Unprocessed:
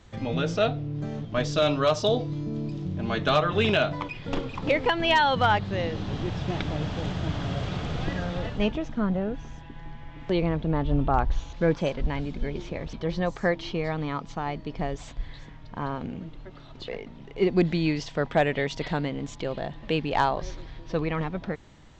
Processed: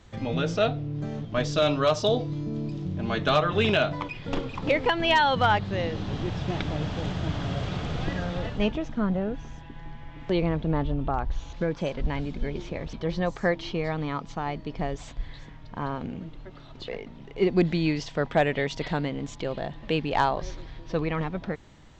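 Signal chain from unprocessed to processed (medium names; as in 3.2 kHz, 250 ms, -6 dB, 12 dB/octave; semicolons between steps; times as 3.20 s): 10.82–12.05 s: compression, threshold -23 dBFS, peak gain reduction 6 dB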